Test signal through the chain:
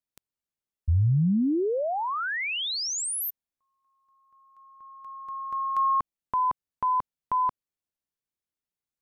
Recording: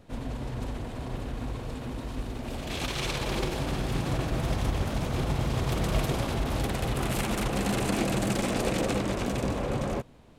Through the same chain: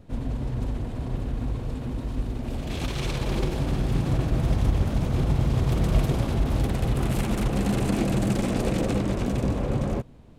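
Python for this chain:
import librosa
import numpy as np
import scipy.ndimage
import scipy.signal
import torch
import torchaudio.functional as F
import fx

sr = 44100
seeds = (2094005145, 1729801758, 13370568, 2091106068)

y = fx.low_shelf(x, sr, hz=380.0, db=10.0)
y = y * librosa.db_to_amplitude(-3.0)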